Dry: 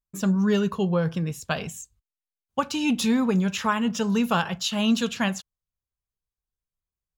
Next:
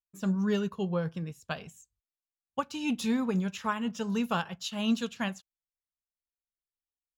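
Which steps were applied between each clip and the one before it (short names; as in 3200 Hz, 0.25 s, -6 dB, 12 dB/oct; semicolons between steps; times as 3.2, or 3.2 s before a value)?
upward expander 1.5:1, over -43 dBFS; gain -5 dB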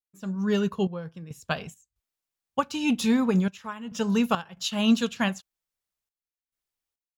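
AGC gain up to 13 dB; step gate "xxxx..xx.xxx" 69 bpm -12 dB; gain -6 dB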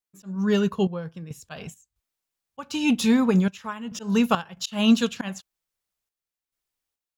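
auto swell 0.167 s; gain +3 dB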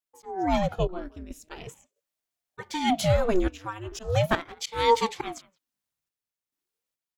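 speakerphone echo 0.17 s, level -20 dB; ring modulator with a swept carrier 400 Hz, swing 75%, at 0.41 Hz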